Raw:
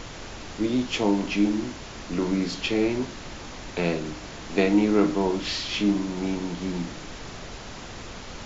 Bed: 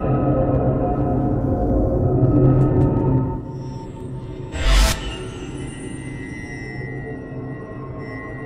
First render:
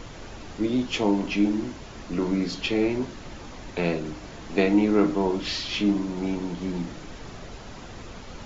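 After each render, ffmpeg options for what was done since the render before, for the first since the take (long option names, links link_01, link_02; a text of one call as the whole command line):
ffmpeg -i in.wav -af "afftdn=noise_reduction=6:noise_floor=-40" out.wav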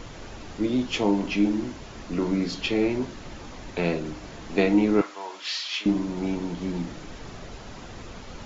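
ffmpeg -i in.wav -filter_complex "[0:a]asettb=1/sr,asplit=3[link_01][link_02][link_03];[link_01]atrim=end=5.014[link_04];[link_02]atrim=start=5.01:end=5.86,asetpts=PTS-STARTPTS,afade=type=in:duration=0.004:curve=qsin,afade=type=out:start_time=0.846:duration=0.004:curve=qsin,highpass=1100[link_05];[link_03]atrim=start=5.856[link_06];[link_04][link_05]acrossfade=duration=0.004:curve1=hsin:curve2=qsin[link_07];[link_07][link_06]acrossfade=duration=0.004:curve1=qsin:curve2=hsin" out.wav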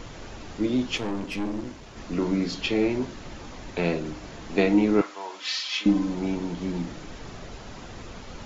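ffmpeg -i in.wav -filter_complex "[0:a]asettb=1/sr,asplit=3[link_01][link_02][link_03];[link_01]atrim=end=0.974[link_04];[link_02]atrim=start=0.97:end=1.97,asetpts=PTS-STARTPTS,afade=type=in:duration=0.004:curve=qsin,afade=type=out:start_time=0.996:duration=0.004:curve=qsin,aeval=exprs='(tanh(20*val(0)+0.65)-tanh(0.65))/20':channel_layout=same[link_05];[link_03]atrim=start=1.966[link_06];[link_04][link_05]acrossfade=duration=0.004:curve1=hsin:curve2=qsin[link_07];[link_07][link_06]acrossfade=duration=0.004:curve1=qsin:curve2=hsin,asettb=1/sr,asplit=3[link_08][link_09][link_10];[link_08]atrim=end=5.404[link_11];[link_09]atrim=start=5.4:end=6.15,asetpts=PTS-STARTPTS,afade=type=in:duration=0.004:curve=qsin,afade=type=out:start_time=0.746:duration=0.004:curve=qsin,aecho=1:1:3.9:0.58,atrim=end_sample=33075[link_12];[link_10]atrim=start=6.146[link_13];[link_11][link_12]acrossfade=duration=0.004:curve1=hsin:curve2=qsin[link_14];[link_14][link_13]acrossfade=duration=0.004:curve1=qsin:curve2=hsin" out.wav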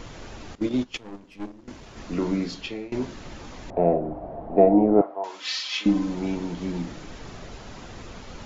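ffmpeg -i in.wav -filter_complex "[0:a]asettb=1/sr,asplit=3[link_01][link_02][link_03];[link_01]atrim=end=0.554[link_04];[link_02]atrim=start=0.55:end=1.68,asetpts=PTS-STARTPTS,afade=type=in:duration=0.004:curve=qsin,afade=type=out:start_time=1.126:duration=0.004:curve=qsin,agate=range=-17dB:threshold=-27dB:ratio=16:release=100:detection=peak[link_05];[link_03]atrim=start=1.676[link_06];[link_04][link_05]acrossfade=duration=0.004:curve1=hsin:curve2=qsin[link_07];[link_07][link_06]acrossfade=duration=0.004:curve1=qsin:curve2=hsin,asettb=1/sr,asplit=3[link_08][link_09][link_10];[link_08]atrim=end=3.704[link_11];[link_09]atrim=start=3.7:end=5.24,asetpts=PTS-STARTPTS,afade=type=in:duration=0.004:curve=qsin,afade=type=out:start_time=1.536:duration=0.004:curve=qsin,lowpass=frequency=690:width_type=q:width=5[link_12];[link_10]atrim=start=5.236[link_13];[link_11][link_12]acrossfade=duration=0.004:curve1=hsin:curve2=qsin[link_14];[link_14][link_13]acrossfade=duration=0.004:curve1=qsin:curve2=hsin,asplit=2[link_15][link_16];[link_15]atrim=end=2.92,asetpts=PTS-STARTPTS,afade=type=out:start_time=2.32:duration=0.6:silence=0.0794328[link_17];[link_16]atrim=start=2.92,asetpts=PTS-STARTPTS,afade=type=in:duration=0.004:curve=hsin:silence=0.0794328[link_18];[link_17][link_18]concat=n=2:v=0:a=1" out.wav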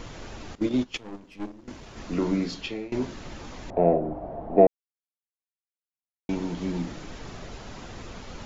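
ffmpeg -i in.wav -filter_complex "[0:a]asplit=3[link_01][link_02][link_03];[link_01]atrim=end=4.67,asetpts=PTS-STARTPTS,afade=type=out:start_time=4.666:duration=0.004:curve=hsin[link_04];[link_02]atrim=start=4.67:end=6.29,asetpts=PTS-STARTPTS,volume=0[link_05];[link_03]atrim=start=6.29,asetpts=PTS-STARTPTS,afade=type=in:duration=0.004:curve=hsin[link_06];[link_04][link_05][link_06]concat=n=3:v=0:a=1" out.wav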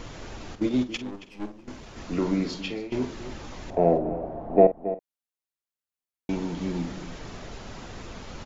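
ffmpeg -i in.wav -filter_complex "[0:a]asplit=2[link_01][link_02];[link_02]adelay=48,volume=-12.5dB[link_03];[link_01][link_03]amix=inputs=2:normalize=0,asplit=2[link_04][link_05];[link_05]adelay=274.1,volume=-13dB,highshelf=frequency=4000:gain=-6.17[link_06];[link_04][link_06]amix=inputs=2:normalize=0" out.wav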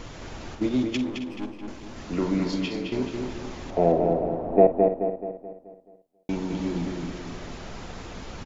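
ffmpeg -i in.wav -filter_complex "[0:a]asplit=2[link_01][link_02];[link_02]adelay=215,lowpass=frequency=4800:poles=1,volume=-4dB,asplit=2[link_03][link_04];[link_04]adelay=215,lowpass=frequency=4800:poles=1,volume=0.47,asplit=2[link_05][link_06];[link_06]adelay=215,lowpass=frequency=4800:poles=1,volume=0.47,asplit=2[link_07][link_08];[link_08]adelay=215,lowpass=frequency=4800:poles=1,volume=0.47,asplit=2[link_09][link_10];[link_10]adelay=215,lowpass=frequency=4800:poles=1,volume=0.47,asplit=2[link_11][link_12];[link_12]adelay=215,lowpass=frequency=4800:poles=1,volume=0.47[link_13];[link_01][link_03][link_05][link_07][link_09][link_11][link_13]amix=inputs=7:normalize=0" out.wav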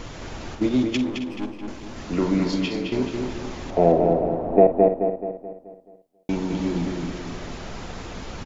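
ffmpeg -i in.wav -af "volume=3.5dB,alimiter=limit=-3dB:level=0:latency=1" out.wav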